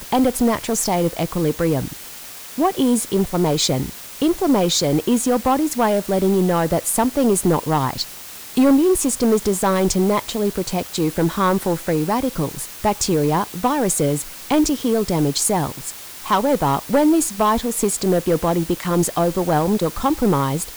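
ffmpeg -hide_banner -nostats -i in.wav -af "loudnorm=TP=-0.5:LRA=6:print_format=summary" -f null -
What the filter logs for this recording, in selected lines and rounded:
Input Integrated:    -19.2 LUFS
Input True Peak:      -8.2 dBTP
Input LRA:             2.0 LU
Input Threshold:     -29.4 LUFS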